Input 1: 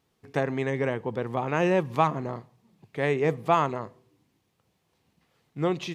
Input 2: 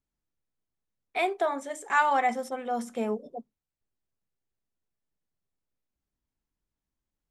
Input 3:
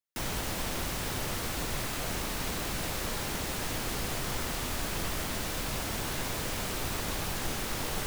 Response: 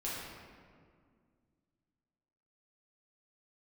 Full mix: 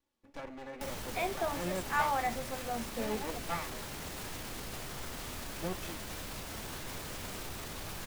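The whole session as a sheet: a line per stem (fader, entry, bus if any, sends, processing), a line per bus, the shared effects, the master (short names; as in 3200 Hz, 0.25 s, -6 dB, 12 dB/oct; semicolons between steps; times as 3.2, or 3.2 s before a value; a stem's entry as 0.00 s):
-6.5 dB, 0.00 s, no send, minimum comb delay 3.5 ms
-3.0 dB, 0.00 s, no send, dry
+1.0 dB, 0.65 s, no send, limiter -29 dBFS, peak gain reduction 8 dB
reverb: off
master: flange 1.9 Hz, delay 9 ms, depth 6 ms, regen +77%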